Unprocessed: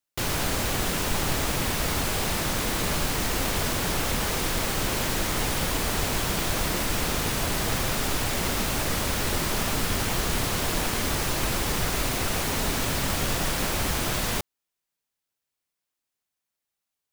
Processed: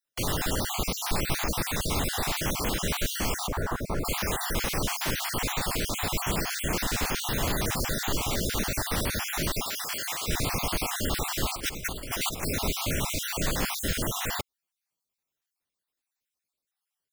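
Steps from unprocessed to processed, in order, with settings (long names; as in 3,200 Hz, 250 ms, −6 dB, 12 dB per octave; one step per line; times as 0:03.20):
time-frequency cells dropped at random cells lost 43%
0:03.47–0:04.05: high shelf with overshoot 1,900 Hz −13 dB, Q 1.5
0:09.65–0:10.28: high-pass filter 1,200 Hz 6 dB per octave
0:11.55–0:12.43: compressor whose output falls as the input rises −32 dBFS, ratio −0.5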